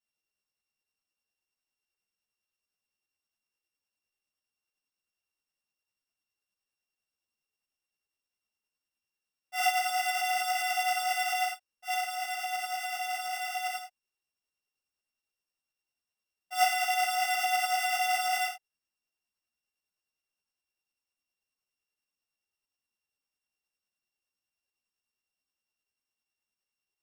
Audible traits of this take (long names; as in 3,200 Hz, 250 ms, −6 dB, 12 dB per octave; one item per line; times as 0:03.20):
a buzz of ramps at a fixed pitch in blocks of 16 samples
tremolo saw up 9.8 Hz, depth 40%
a shimmering, thickened sound